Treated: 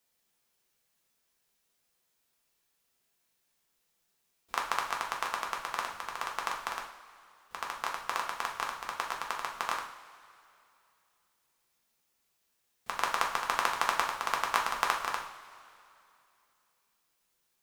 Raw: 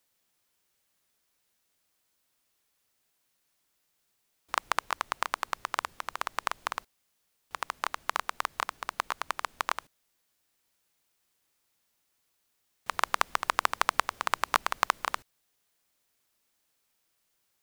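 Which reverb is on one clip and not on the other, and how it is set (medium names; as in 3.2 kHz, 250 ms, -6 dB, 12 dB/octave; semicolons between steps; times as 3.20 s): two-slope reverb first 0.51 s, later 2.7 s, from -17 dB, DRR -1 dB; trim -4.5 dB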